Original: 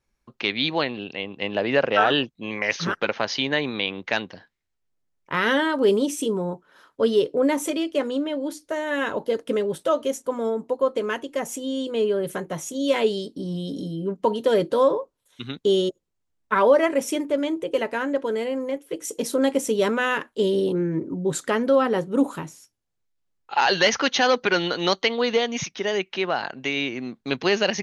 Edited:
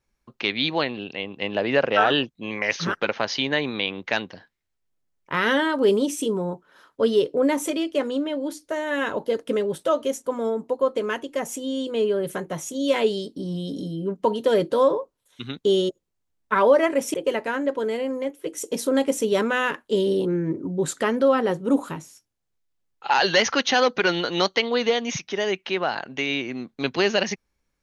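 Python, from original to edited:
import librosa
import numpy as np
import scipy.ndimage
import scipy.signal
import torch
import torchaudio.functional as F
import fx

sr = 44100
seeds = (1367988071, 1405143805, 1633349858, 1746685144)

y = fx.edit(x, sr, fx.cut(start_s=17.14, length_s=0.47), tone=tone)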